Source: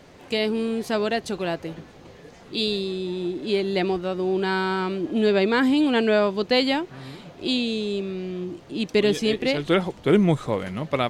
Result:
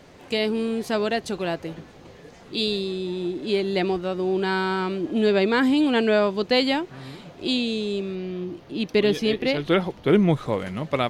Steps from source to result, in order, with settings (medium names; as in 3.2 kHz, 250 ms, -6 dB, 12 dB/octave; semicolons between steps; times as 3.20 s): 8.15–10.46 s: peaking EQ 7.8 kHz -11 dB 0.49 oct